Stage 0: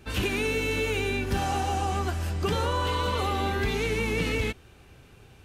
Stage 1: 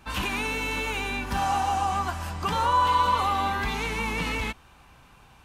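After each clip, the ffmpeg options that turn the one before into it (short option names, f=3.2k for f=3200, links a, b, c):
-af "equalizer=f=100:t=o:w=0.67:g=-9,equalizer=f=400:t=o:w=0.67:g=-10,equalizer=f=1k:t=o:w=0.67:g=11"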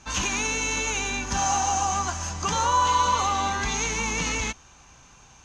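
-af "lowpass=f=6.4k:t=q:w=12"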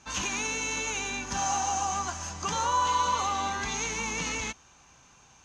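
-af "lowshelf=f=61:g=-11,volume=-4.5dB"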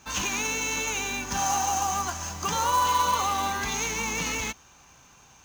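-af "acrusher=bits=3:mode=log:mix=0:aa=0.000001,volume=2.5dB"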